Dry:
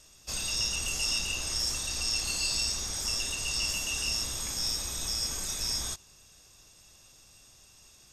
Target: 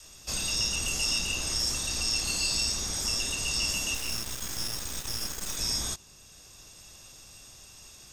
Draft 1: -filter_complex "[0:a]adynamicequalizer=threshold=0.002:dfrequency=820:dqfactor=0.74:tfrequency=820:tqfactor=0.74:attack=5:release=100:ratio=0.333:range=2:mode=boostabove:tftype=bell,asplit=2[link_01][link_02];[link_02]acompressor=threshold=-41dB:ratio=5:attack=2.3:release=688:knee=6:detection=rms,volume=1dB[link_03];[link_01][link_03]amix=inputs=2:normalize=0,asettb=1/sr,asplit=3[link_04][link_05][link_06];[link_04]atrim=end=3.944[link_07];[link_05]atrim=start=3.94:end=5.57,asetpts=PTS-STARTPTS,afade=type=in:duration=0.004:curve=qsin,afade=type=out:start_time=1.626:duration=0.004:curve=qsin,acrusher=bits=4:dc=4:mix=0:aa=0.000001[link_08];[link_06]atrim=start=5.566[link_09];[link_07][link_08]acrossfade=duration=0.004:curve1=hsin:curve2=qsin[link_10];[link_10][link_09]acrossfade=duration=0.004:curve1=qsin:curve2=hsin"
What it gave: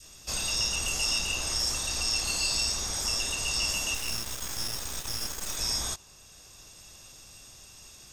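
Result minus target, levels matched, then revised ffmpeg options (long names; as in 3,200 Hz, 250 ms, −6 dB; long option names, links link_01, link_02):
250 Hz band −3.0 dB
-filter_complex "[0:a]adynamicequalizer=threshold=0.002:dfrequency=220:dqfactor=0.74:tfrequency=220:tqfactor=0.74:attack=5:release=100:ratio=0.333:range=2:mode=boostabove:tftype=bell,asplit=2[link_01][link_02];[link_02]acompressor=threshold=-41dB:ratio=5:attack=2.3:release=688:knee=6:detection=rms,volume=1dB[link_03];[link_01][link_03]amix=inputs=2:normalize=0,asettb=1/sr,asplit=3[link_04][link_05][link_06];[link_04]atrim=end=3.944[link_07];[link_05]atrim=start=3.94:end=5.57,asetpts=PTS-STARTPTS,afade=type=in:duration=0.004:curve=qsin,afade=type=out:start_time=1.626:duration=0.004:curve=qsin,acrusher=bits=4:dc=4:mix=0:aa=0.000001[link_08];[link_06]atrim=start=5.566[link_09];[link_07][link_08]acrossfade=duration=0.004:curve1=hsin:curve2=qsin[link_10];[link_10][link_09]acrossfade=duration=0.004:curve1=qsin:curve2=hsin"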